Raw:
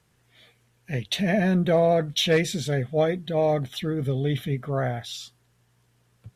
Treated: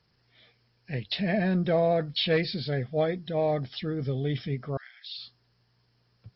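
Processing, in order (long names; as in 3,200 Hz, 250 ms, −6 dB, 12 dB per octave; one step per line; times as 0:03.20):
hearing-aid frequency compression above 4,000 Hz 4 to 1
0:04.77–0:05.18: inverse Chebyshev high-pass filter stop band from 460 Hz, stop band 70 dB
level −4 dB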